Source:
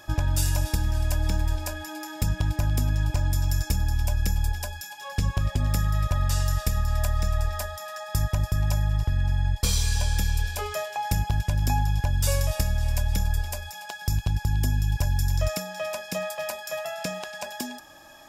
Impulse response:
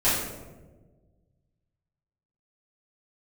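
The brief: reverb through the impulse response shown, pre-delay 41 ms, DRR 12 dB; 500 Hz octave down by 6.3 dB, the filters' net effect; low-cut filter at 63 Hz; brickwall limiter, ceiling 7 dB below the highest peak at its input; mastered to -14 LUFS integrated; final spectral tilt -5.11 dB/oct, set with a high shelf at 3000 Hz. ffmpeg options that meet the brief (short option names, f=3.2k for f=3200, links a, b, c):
-filter_complex "[0:a]highpass=63,equalizer=f=500:t=o:g=-8.5,highshelf=f=3k:g=-5,alimiter=limit=-19.5dB:level=0:latency=1,asplit=2[a][b];[1:a]atrim=start_sample=2205,adelay=41[c];[b][c]afir=irnorm=-1:irlink=0,volume=-27dB[d];[a][d]amix=inputs=2:normalize=0,volume=16dB"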